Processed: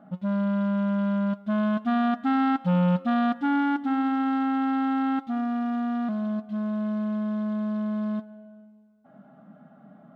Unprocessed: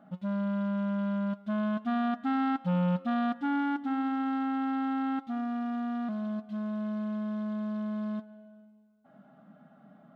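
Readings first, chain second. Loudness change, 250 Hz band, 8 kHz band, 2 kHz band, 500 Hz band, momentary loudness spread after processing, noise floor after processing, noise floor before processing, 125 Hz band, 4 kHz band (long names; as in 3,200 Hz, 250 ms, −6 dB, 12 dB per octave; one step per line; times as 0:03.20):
+5.5 dB, +5.5 dB, can't be measured, +5.5 dB, +5.5 dB, 5 LU, −54 dBFS, −59 dBFS, +5.5 dB, +5.5 dB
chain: one half of a high-frequency compander decoder only
level +5.5 dB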